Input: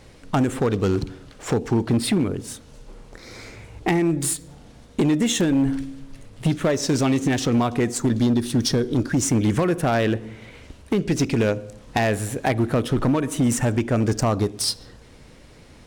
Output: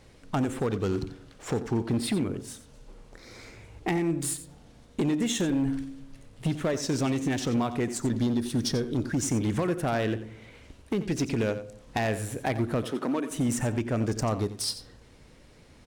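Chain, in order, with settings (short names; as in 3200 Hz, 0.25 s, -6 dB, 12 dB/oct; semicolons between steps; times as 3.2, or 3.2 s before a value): 12.84–13.31 HPF 220 Hz 24 dB/oct; echo 89 ms -13 dB; gain -7 dB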